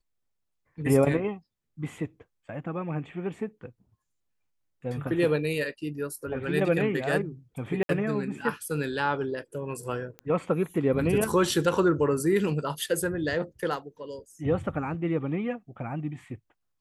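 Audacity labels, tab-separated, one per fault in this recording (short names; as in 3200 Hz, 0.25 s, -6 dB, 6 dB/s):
7.830000	7.890000	gap 62 ms
10.190000	10.190000	pop -26 dBFS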